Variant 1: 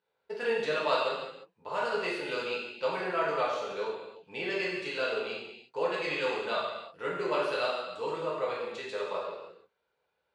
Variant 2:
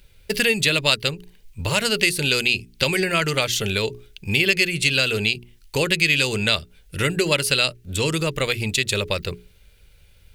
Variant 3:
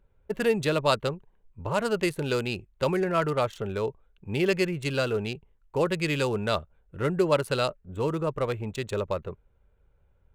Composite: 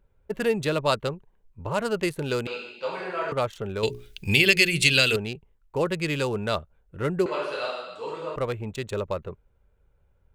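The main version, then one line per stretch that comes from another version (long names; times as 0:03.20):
3
0:02.47–0:03.32: punch in from 1
0:03.83–0:05.16: punch in from 2
0:07.26–0:08.36: punch in from 1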